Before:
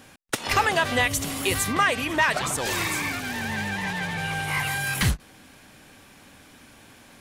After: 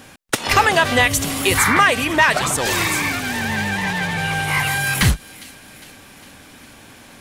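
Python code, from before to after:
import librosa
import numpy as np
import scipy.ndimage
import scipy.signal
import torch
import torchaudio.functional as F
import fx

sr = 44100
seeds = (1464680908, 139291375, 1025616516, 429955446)

p1 = fx.spec_paint(x, sr, seeds[0], shape='noise', start_s=1.57, length_s=0.23, low_hz=830.0, high_hz=2400.0, level_db=-25.0)
p2 = p1 + fx.echo_wet_highpass(p1, sr, ms=406, feedback_pct=58, hz=2700.0, wet_db=-18.0, dry=0)
y = F.gain(torch.from_numpy(p2), 7.0).numpy()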